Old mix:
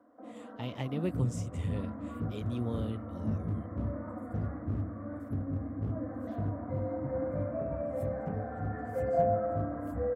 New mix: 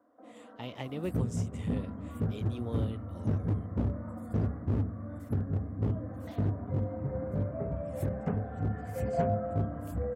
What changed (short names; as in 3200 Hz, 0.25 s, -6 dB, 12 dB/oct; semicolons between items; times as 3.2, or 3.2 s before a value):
first sound -3.5 dB; second sound +10.0 dB; master: add tone controls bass -6 dB, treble 0 dB